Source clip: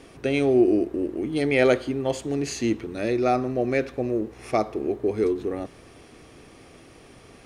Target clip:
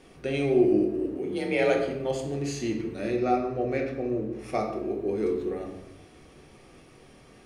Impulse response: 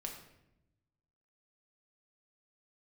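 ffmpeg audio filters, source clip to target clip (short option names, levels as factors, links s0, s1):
-filter_complex "[0:a]asettb=1/sr,asplit=3[s0][s1][s2];[s0]atrim=end=1.154[s3];[s1]atrim=start=1.15:end=1.76,asetpts=PTS-STARTPTS,afade=t=in:d=0.004:c=qsin,afade=t=out:st=0.606:d=0.004:c=qsin,afreqshift=38[s4];[s2]atrim=start=1.756[s5];[s3][s4]acrossfade=d=0.004:c1=hsin:c2=qsin[s6];[s6][s5]acrossfade=d=0.004:c1=qsin:c2=hsin,asettb=1/sr,asplit=3[s7][s8][s9];[s7]atrim=end=3.164[s10];[s8]atrim=start=3.16:end=4.39,asetpts=PTS-STARTPTS,afade=t=in:d=0.004:c=qsin,afade=t=out:st=1.226:d=0.004:c=qsin,highshelf=f=5200:g=-6.5[s11];[s9]atrim=start=4.386[s12];[s10][s11]acrossfade=d=0.004:c1=hsin:c2=qsin[s13];[s13][s12]acrossfade=d=0.004:c1=qsin:c2=hsin[s14];[1:a]atrim=start_sample=2205[s15];[s14][s15]afir=irnorm=-1:irlink=0,volume=0.75"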